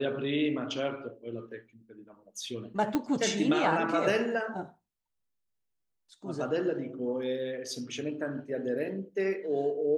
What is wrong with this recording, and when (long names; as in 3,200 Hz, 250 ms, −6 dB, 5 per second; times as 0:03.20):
0:02.95: click −15 dBFS